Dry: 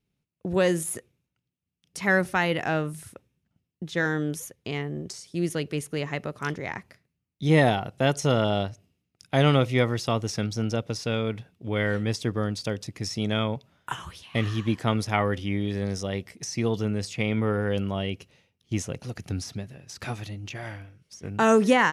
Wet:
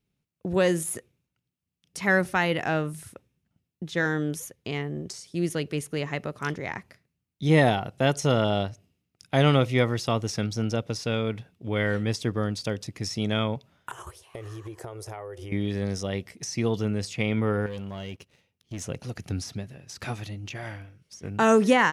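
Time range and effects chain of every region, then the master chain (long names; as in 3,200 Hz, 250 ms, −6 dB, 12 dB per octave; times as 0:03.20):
0:13.91–0:15.52: noise gate −41 dBFS, range −6 dB + drawn EQ curve 120 Hz 0 dB, 240 Hz −21 dB, 360 Hz +10 dB, 690 Hz +6 dB, 3,500 Hz −7 dB, 8,200 Hz +8 dB + downward compressor 16 to 1, threshold −34 dBFS
0:17.66–0:18.82: leveller curve on the samples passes 2 + downward compressor 1.5 to 1, threshold −57 dBFS
whole clip: no processing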